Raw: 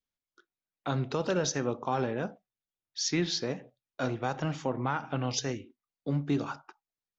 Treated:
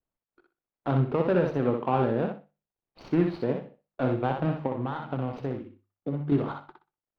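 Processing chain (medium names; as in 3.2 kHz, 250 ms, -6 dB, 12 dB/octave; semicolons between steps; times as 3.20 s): median filter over 25 samples; hum notches 50/100/150/200 Hz; 4.66–6.32 s: compression, threshold -33 dBFS, peak gain reduction 7.5 dB; distance through air 390 m; thinning echo 62 ms, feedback 21%, high-pass 320 Hz, level -4 dB; trim +6.5 dB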